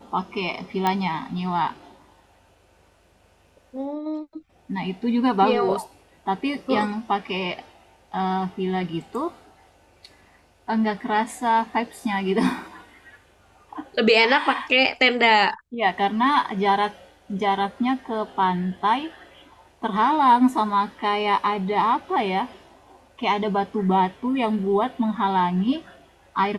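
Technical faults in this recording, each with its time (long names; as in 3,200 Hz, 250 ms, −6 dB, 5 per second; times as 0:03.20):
0:00.87: click −9 dBFS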